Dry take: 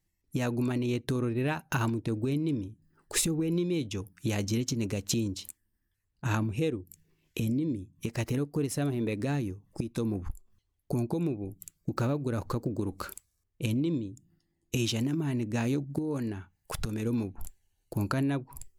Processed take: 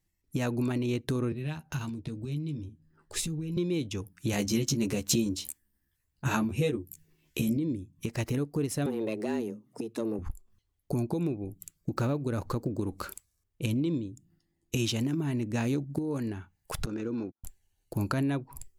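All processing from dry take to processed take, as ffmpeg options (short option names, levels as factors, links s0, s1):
-filter_complex "[0:a]asettb=1/sr,asplit=3[s0][s1][s2];[s0]atrim=end=1.324[s3];[s1]atrim=start=1.32:end=3.57,asetpts=PTS-STARTPTS,afade=t=in:d=0.004:c=qsin,afade=t=out:st=2.246:d=0.004:c=qsin,asplit=2[s4][s5];[s5]adelay=13,volume=0.531[s6];[s4][s6]amix=inputs=2:normalize=0,atrim=end_sample=99225,acrossover=split=160|3000[s7][s8][s9];[s8]acompressor=threshold=0.00316:ratio=2:attack=3.2:release=140:knee=2.83:detection=peak[s10];[s7][s10][s9]amix=inputs=3:normalize=0,lowpass=f=4000:p=1[s11];[s2]atrim=start=3.566[s12];[s3][s11]acrossfade=d=0.004:c1=hsin:c2=qsin[s13];[s13][s12]acrossfade=d=0.004:c1=qsin:c2=hsin,asettb=1/sr,asplit=3[s14][s15][s16];[s14]atrim=end=4.324[s17];[s15]atrim=start=4.32:end=7.57,asetpts=PTS-STARTPTS,afade=t=in:d=0.004:c=qsin,afade=t=out:st=3.246:d=0.004:c=qsin,highshelf=f=8900:g=5.5,asplit=2[s18][s19];[s19]adelay=14,volume=0.794[s20];[s18][s20]amix=inputs=2:normalize=0,atrim=end_sample=143325[s21];[s16]atrim=start=7.566[s22];[s17][s21]acrossfade=d=0.004:c1=hsin:c2=qsin[s23];[s23][s22]acrossfade=d=0.004:c1=qsin:c2=hsin,asettb=1/sr,asplit=3[s24][s25][s26];[s24]atrim=end=8.864[s27];[s25]atrim=start=8.86:end=10.19,asetpts=PTS-STARTPTS,afade=t=in:d=0.004:c=qsin,afade=t=out:st=1.326:d=0.004:c=qsin,aeval=exprs='(tanh(12.6*val(0)+0.3)-tanh(0.3))/12.6':c=same,afreqshift=110[s28];[s26]atrim=start=10.186[s29];[s27][s28]acrossfade=d=0.004:c1=hsin:c2=qsin[s30];[s30][s29]acrossfade=d=0.004:c1=qsin:c2=hsin,asettb=1/sr,asplit=3[s31][s32][s33];[s31]atrim=end=16.864[s34];[s32]atrim=start=16.86:end=17.44,asetpts=PTS-STARTPTS,afade=t=in:d=0.004:c=qsin,afade=t=out:st=0.576:d=0.004:c=qsin,highpass=160,equalizer=f=330:t=q:w=4:g=6,equalizer=f=520:t=q:w=4:g=4,equalizer=f=1400:t=q:w=4:g=8,equalizer=f=2100:t=q:w=4:g=-4,equalizer=f=3400:t=q:w=4:g=-6,lowpass=f=5800:w=0.5412,lowpass=f=5800:w=1.3066,acompressor=threshold=0.0251:ratio=2:attack=3.2:release=140:knee=1:detection=peak,agate=range=0.00562:threshold=0.00794:ratio=16:release=100:detection=peak[s35];[s33]atrim=start=17.436[s36];[s34][s35]acrossfade=d=0.004:c1=hsin:c2=qsin[s37];[s37][s36]acrossfade=d=0.004:c1=qsin:c2=hsin"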